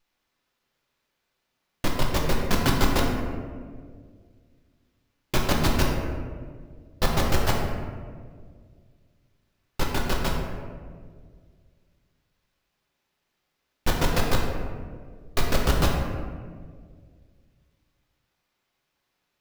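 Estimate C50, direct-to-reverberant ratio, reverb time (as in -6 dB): 2.5 dB, -2.0 dB, 1.8 s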